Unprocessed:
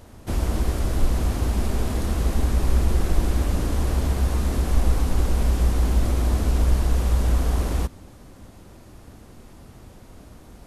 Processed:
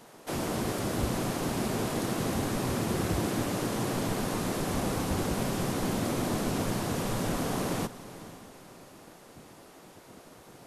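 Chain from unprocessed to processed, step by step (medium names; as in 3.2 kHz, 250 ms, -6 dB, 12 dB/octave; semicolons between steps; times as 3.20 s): spectral gate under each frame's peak -10 dB weak; echo that smears into a reverb 480 ms, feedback 43%, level -15.5 dB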